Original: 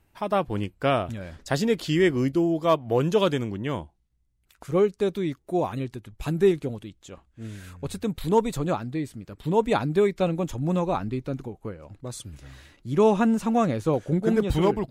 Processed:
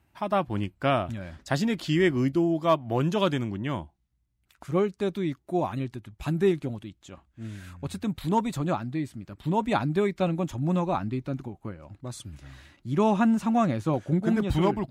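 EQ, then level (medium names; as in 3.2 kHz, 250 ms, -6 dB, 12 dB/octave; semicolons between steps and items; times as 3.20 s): high-pass 54 Hz; peaking EQ 460 Hz -12.5 dB 0.27 oct; treble shelf 4.9 kHz -5.5 dB; 0.0 dB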